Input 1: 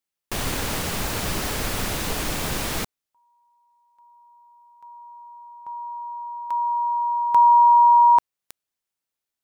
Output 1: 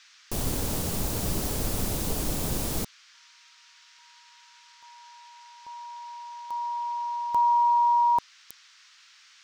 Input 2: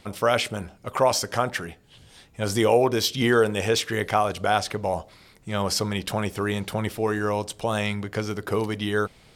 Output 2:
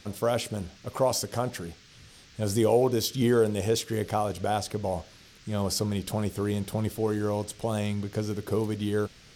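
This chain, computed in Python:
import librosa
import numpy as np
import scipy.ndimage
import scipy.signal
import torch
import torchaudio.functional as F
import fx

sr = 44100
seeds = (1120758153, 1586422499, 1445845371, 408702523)

y = fx.peak_eq(x, sr, hz=1900.0, db=-13.0, octaves=2.4)
y = fx.dmg_noise_band(y, sr, seeds[0], low_hz=1200.0, high_hz=6100.0, level_db=-56.0)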